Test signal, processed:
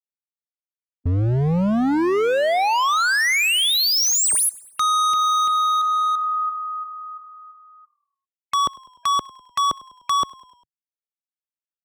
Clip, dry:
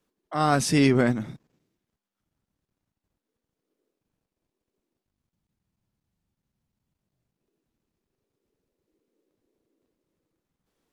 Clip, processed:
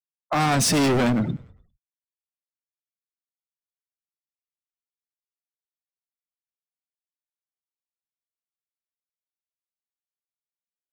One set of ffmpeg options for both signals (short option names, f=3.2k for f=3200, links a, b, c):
-filter_complex "[0:a]acrossover=split=410[a][b];[b]acompressor=threshold=-21dB:ratio=2[c];[a][c]amix=inputs=2:normalize=0,afftfilt=real='re*gte(hypot(re,im),0.01)':imag='im*gte(hypot(re,im),0.01)':win_size=1024:overlap=0.75,asplit=2[d][e];[e]acompressor=threshold=-34dB:ratio=16,volume=3dB[f];[d][f]amix=inputs=2:normalize=0,highpass=f=59:p=1,asoftclip=type=hard:threshold=-26dB,asplit=5[g][h][i][j][k];[h]adelay=100,afreqshift=-39,volume=-22.5dB[l];[i]adelay=200,afreqshift=-78,volume=-28dB[m];[j]adelay=300,afreqshift=-117,volume=-33.5dB[n];[k]adelay=400,afreqshift=-156,volume=-39dB[o];[g][l][m][n][o]amix=inputs=5:normalize=0,volume=8dB"